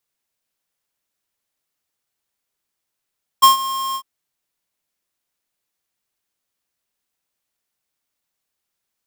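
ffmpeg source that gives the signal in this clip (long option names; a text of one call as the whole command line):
ffmpeg -f lavfi -i "aevalsrc='0.447*(2*lt(mod(1070*t,1),0.5)-1)':duration=0.602:sample_rate=44100,afade=type=in:duration=0.017,afade=type=out:start_time=0.017:duration=0.127:silence=0.15,afade=type=out:start_time=0.53:duration=0.072" out.wav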